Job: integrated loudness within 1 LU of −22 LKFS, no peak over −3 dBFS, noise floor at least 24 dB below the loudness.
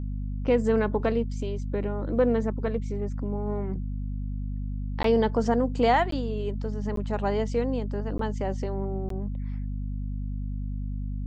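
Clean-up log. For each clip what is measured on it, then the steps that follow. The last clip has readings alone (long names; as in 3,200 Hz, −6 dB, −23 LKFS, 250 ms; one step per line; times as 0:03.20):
number of dropouts 5; longest dropout 13 ms; mains hum 50 Hz; hum harmonics up to 250 Hz; level of the hum −29 dBFS; integrated loudness −28.5 LKFS; sample peak −10.5 dBFS; target loudness −22.0 LKFS
→ repair the gap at 0:05.03/0:06.11/0:06.96/0:08.18/0:09.09, 13 ms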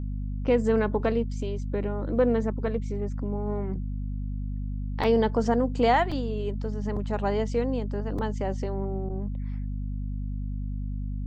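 number of dropouts 0; mains hum 50 Hz; hum harmonics up to 250 Hz; level of the hum −29 dBFS
→ mains-hum notches 50/100/150/200/250 Hz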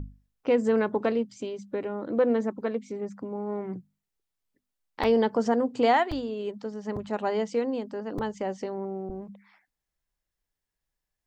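mains hum none found; integrated loudness −28.5 LKFS; sample peak −11.5 dBFS; target loudness −22.0 LKFS
→ level +6.5 dB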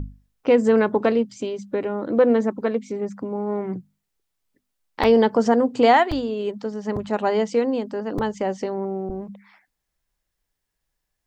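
integrated loudness −22.0 LKFS; sample peak −5.0 dBFS; background noise floor −80 dBFS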